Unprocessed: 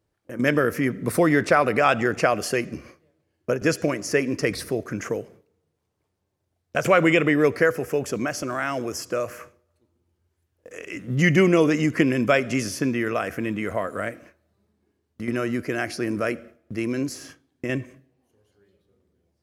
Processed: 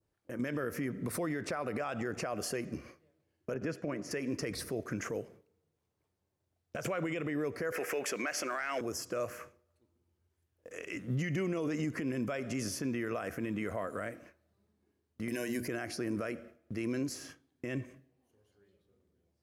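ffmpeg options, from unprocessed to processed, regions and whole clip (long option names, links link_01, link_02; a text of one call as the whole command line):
ffmpeg -i in.wav -filter_complex "[0:a]asettb=1/sr,asplit=3[link_01][link_02][link_03];[link_01]atrim=end=3.544[link_04];[link_02]atrim=start=3.54:end=4.11,asetpts=PTS-STARTPTS,afade=type=in:duration=0.004:curve=qsin,afade=type=out:start_time=0.566:duration=0.004:curve=qsin,agate=range=-33dB:threshold=-35dB:ratio=3:release=100:detection=peak,highpass=150,bass=frequency=250:gain=5,treble=frequency=4000:gain=-13[link_05];[link_03]atrim=start=4.106[link_06];[link_04][link_05]acrossfade=duration=0.004:curve1=hsin:curve2=qsin[link_07];[link_07][link_06]acrossfade=duration=0.004:curve1=qsin:curve2=hsin,asettb=1/sr,asplit=3[link_08][link_09][link_10];[link_08]atrim=end=7.724[link_11];[link_09]atrim=start=7.72:end=8.81,asetpts=PTS-STARTPTS,afade=type=in:duration=0.004:curve=qsin,afade=type=out:start_time=1.086:duration=0.004:curve=qsin,highpass=370,equalizer=frequency=2200:width=1.1:gain=14,acontrast=52[link_12];[link_10]atrim=start=8.806[link_13];[link_11][link_12]acrossfade=duration=0.004:curve1=hsin:curve2=qsin[link_14];[link_14][link_13]acrossfade=duration=0.004:curve1=qsin:curve2=hsin,asettb=1/sr,asplit=3[link_15][link_16][link_17];[link_15]atrim=end=15.284[link_18];[link_16]atrim=start=15.28:end=15.68,asetpts=PTS-STARTPTS,afade=type=in:duration=0.004:curve=qsin,afade=type=out:start_time=0.396:duration=0.004:curve=qsin,asuperstop=centerf=1300:order=12:qfactor=4.6,aemphasis=mode=production:type=75kf,bandreject=frequency=60:width_type=h:width=6,bandreject=frequency=120:width_type=h:width=6,bandreject=frequency=180:width_type=h:width=6,bandreject=frequency=240:width_type=h:width=6,bandreject=frequency=300:width_type=h:width=6,bandreject=frequency=360:width_type=h:width=6,bandreject=frequency=420:width_type=h:width=6[link_19];[link_17]atrim=start=15.676[link_20];[link_18][link_19]acrossfade=duration=0.004:curve1=hsin:curve2=qsin[link_21];[link_21][link_20]acrossfade=duration=0.004:curve1=qsin:curve2=hsin,adynamicequalizer=threshold=0.0126:dfrequency=2700:dqfactor=0.87:tfrequency=2700:tqfactor=0.87:attack=5:release=100:ratio=0.375:range=2.5:mode=cutabove:tftype=bell,acompressor=threshold=-22dB:ratio=3,alimiter=limit=-20dB:level=0:latency=1:release=53,volume=-6dB" out.wav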